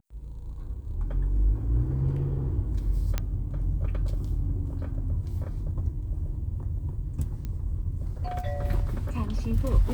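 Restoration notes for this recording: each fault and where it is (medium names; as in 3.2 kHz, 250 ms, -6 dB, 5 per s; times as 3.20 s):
3.18 s: pop -13 dBFS
7.45 s: pop -22 dBFS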